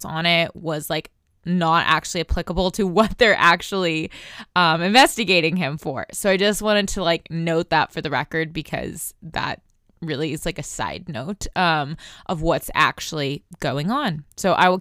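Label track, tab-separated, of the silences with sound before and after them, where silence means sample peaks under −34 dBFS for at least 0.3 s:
1.060000	1.460000	silence
9.550000	10.020000	silence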